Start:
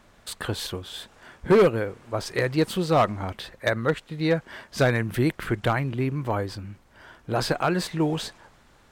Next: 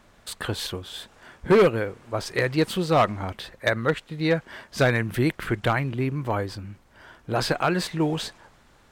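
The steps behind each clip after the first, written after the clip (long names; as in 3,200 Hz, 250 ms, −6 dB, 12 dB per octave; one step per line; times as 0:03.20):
dynamic equaliser 2,500 Hz, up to +3 dB, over −35 dBFS, Q 0.75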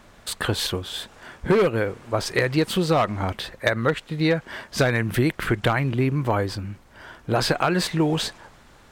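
downward compressor 6 to 1, threshold −22 dBFS, peak gain reduction 8 dB
level +5.5 dB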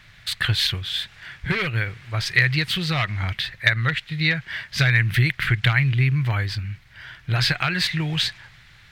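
octave-band graphic EQ 125/250/500/1,000/2,000/4,000/8,000 Hz +11/−12/−11/−7/+11/+7/−5 dB
level −1.5 dB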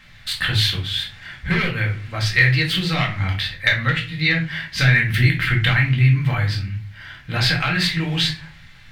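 rectangular room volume 270 cubic metres, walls furnished, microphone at 2.1 metres
level −1 dB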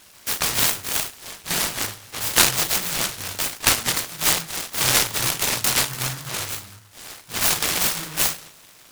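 high-pass filter 1,300 Hz 6 dB per octave
short delay modulated by noise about 1,200 Hz, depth 0.45 ms
level +1.5 dB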